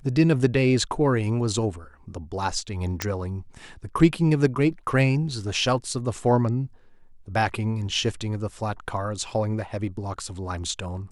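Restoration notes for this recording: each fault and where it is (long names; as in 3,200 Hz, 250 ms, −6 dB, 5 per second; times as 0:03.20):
0:03.02: click −8 dBFS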